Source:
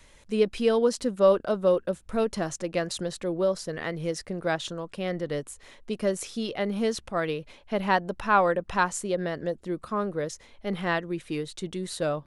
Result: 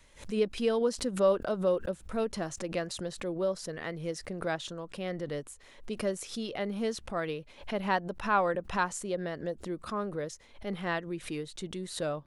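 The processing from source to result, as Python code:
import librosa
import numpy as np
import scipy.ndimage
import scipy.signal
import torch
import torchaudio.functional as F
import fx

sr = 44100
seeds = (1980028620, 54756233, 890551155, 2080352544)

y = fx.pre_swell(x, sr, db_per_s=140.0)
y = y * 10.0 ** (-5.5 / 20.0)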